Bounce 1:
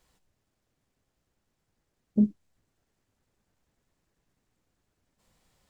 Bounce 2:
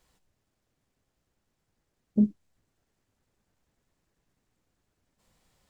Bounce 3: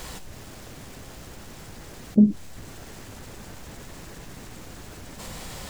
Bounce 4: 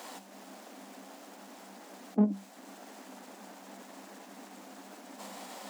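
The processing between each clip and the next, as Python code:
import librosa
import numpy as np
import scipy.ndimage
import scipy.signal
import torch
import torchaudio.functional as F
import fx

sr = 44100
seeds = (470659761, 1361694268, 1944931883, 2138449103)

y1 = x
y2 = fx.env_flatten(y1, sr, amount_pct=50)
y2 = y2 * librosa.db_to_amplitude(6.0)
y3 = fx.diode_clip(y2, sr, knee_db=-21.0)
y3 = scipy.signal.sosfilt(scipy.signal.cheby1(6, 9, 190.0, 'highpass', fs=sr, output='sos'), y3)
y3 = y3 * librosa.db_to_amplitude(1.0)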